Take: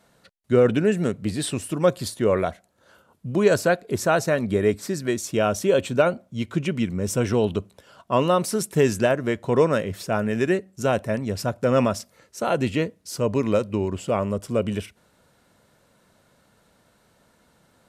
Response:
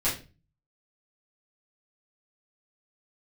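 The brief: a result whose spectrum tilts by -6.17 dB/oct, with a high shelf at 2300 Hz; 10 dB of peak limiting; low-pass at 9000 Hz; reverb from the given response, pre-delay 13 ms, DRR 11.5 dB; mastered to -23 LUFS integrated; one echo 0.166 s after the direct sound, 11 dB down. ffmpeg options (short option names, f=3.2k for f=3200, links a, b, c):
-filter_complex "[0:a]lowpass=9k,highshelf=f=2.3k:g=-3,alimiter=limit=-17dB:level=0:latency=1,aecho=1:1:166:0.282,asplit=2[a][b];[1:a]atrim=start_sample=2205,adelay=13[c];[b][c]afir=irnorm=-1:irlink=0,volume=-21dB[d];[a][d]amix=inputs=2:normalize=0,volume=4.5dB"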